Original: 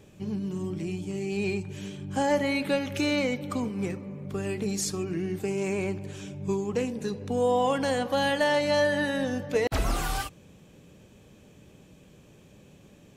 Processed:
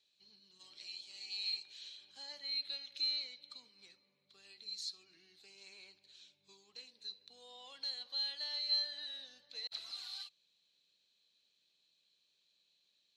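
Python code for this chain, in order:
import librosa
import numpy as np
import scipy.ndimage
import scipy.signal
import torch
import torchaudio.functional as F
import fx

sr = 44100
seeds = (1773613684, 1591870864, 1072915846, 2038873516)

y = fx.spec_clip(x, sr, under_db=18, at=(0.59, 2.1), fade=0.02)
y = fx.bandpass_q(y, sr, hz=4100.0, q=18.0)
y = F.gain(torch.from_numpy(y), 6.0).numpy()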